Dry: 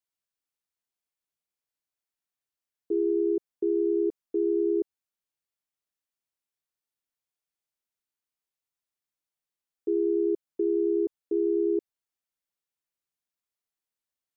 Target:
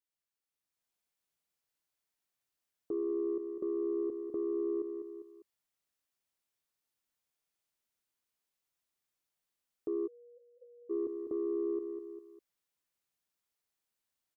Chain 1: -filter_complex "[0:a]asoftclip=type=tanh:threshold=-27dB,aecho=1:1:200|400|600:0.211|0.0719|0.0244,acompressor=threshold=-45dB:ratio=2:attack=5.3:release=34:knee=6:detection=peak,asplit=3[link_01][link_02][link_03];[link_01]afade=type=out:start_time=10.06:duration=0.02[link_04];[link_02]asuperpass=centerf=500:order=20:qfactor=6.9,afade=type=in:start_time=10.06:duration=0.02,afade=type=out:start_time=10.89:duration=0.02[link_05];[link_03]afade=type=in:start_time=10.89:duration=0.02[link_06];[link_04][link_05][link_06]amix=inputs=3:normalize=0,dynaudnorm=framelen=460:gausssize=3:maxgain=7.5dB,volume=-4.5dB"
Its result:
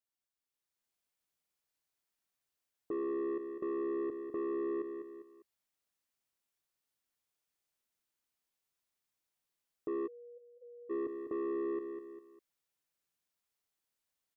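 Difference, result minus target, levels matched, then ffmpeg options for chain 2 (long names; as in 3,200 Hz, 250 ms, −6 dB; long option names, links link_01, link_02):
soft clipping: distortion +13 dB
-filter_complex "[0:a]asoftclip=type=tanh:threshold=-17.5dB,aecho=1:1:200|400|600:0.211|0.0719|0.0244,acompressor=threshold=-45dB:ratio=2:attack=5.3:release=34:knee=6:detection=peak,asplit=3[link_01][link_02][link_03];[link_01]afade=type=out:start_time=10.06:duration=0.02[link_04];[link_02]asuperpass=centerf=500:order=20:qfactor=6.9,afade=type=in:start_time=10.06:duration=0.02,afade=type=out:start_time=10.89:duration=0.02[link_05];[link_03]afade=type=in:start_time=10.89:duration=0.02[link_06];[link_04][link_05][link_06]amix=inputs=3:normalize=0,dynaudnorm=framelen=460:gausssize=3:maxgain=7.5dB,volume=-4.5dB"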